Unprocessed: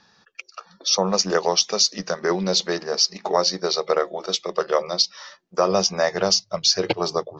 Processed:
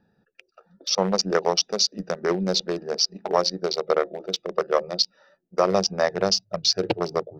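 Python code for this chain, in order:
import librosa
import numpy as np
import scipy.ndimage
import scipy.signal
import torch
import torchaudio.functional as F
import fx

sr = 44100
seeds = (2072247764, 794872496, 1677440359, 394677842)

y = fx.wiener(x, sr, points=41)
y = fx.peak_eq(y, sr, hz=7000.0, db=-5.5, octaves=0.58)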